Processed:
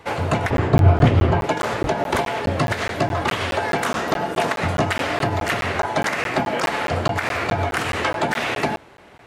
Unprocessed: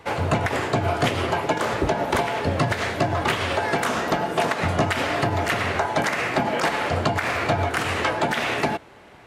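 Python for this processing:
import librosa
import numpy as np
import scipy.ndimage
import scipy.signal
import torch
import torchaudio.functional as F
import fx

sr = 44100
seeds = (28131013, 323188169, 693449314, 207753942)

y = fx.riaa(x, sr, side='playback', at=(0.5, 1.44))
y = fx.buffer_crackle(y, sr, first_s=0.57, period_s=0.21, block=512, kind='zero')
y = F.gain(torch.from_numpy(y), 1.0).numpy()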